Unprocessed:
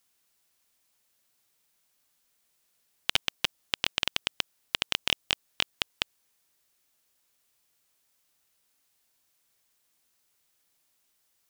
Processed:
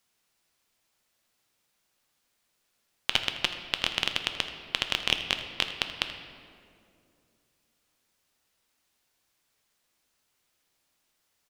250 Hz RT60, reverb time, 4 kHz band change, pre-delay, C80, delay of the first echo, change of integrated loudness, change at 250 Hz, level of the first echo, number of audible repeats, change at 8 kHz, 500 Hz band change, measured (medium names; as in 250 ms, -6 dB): 3.3 s, 2.5 s, +1.0 dB, 4 ms, 8.5 dB, 81 ms, +1.0 dB, +3.0 dB, -15.0 dB, 1, -2.0 dB, +2.5 dB